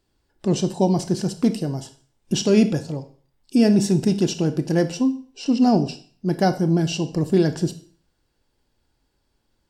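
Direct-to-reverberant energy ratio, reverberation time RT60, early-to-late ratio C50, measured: 10.0 dB, 0.45 s, 14.0 dB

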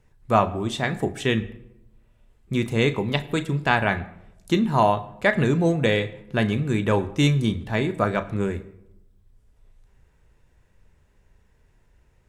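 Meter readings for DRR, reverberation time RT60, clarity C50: 11.0 dB, 0.85 s, 16.0 dB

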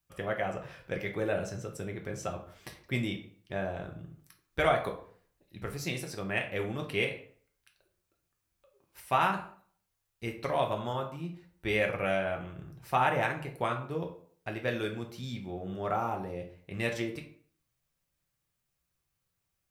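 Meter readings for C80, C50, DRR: 13.5 dB, 9.5 dB, 1.5 dB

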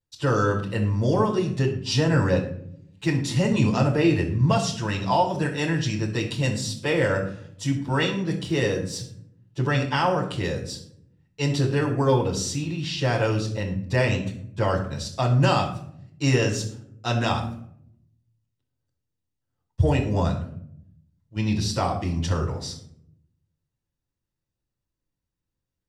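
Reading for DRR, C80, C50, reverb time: -9.5 dB, 11.5 dB, 8.5 dB, 0.65 s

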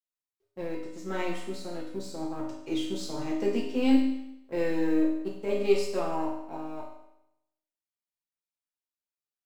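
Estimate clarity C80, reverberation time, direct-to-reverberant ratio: 6.5 dB, 0.80 s, -5.5 dB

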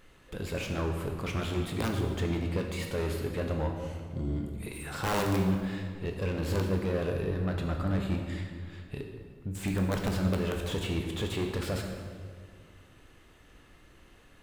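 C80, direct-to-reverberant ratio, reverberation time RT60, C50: 5.5 dB, 2.0 dB, 1.9 s, 4.5 dB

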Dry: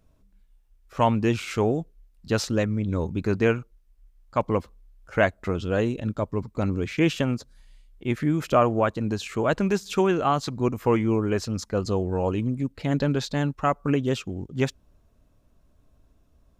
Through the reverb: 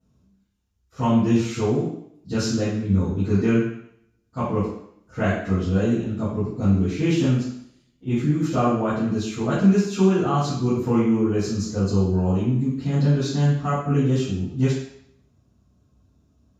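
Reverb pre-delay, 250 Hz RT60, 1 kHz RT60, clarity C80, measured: 3 ms, 0.70 s, 0.75 s, 4.5 dB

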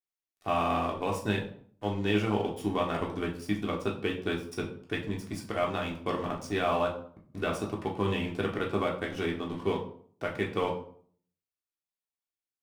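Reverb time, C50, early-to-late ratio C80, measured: 0.55 s, 9.0 dB, 13.0 dB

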